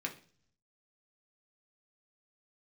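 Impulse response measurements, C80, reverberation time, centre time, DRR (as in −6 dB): 18.0 dB, 0.45 s, 11 ms, 1.0 dB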